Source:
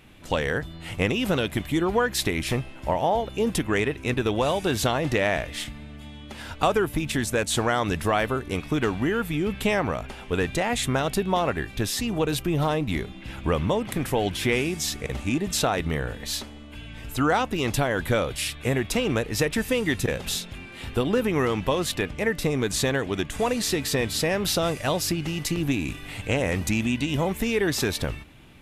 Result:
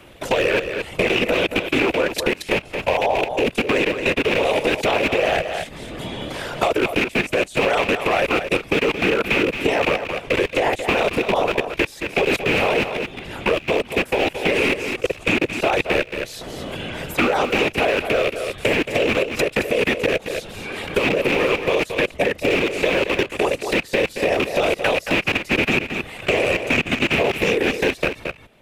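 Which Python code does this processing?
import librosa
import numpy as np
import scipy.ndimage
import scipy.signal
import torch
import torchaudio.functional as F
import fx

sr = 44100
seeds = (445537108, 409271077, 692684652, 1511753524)

y = fx.rattle_buzz(x, sr, strikes_db=-30.0, level_db=-12.0)
y = fx.graphic_eq(y, sr, hz=(125, 250, 500), db=(-8, -4, 10))
y = fx.level_steps(y, sr, step_db=24)
y = fx.whisperise(y, sr, seeds[0])
y = y + 10.0 ** (-10.0 / 20.0) * np.pad(y, (int(223 * sr / 1000.0), 0))[:len(y)]
y = fx.band_squash(y, sr, depth_pct=70)
y = y * 10.0 ** (5.5 / 20.0)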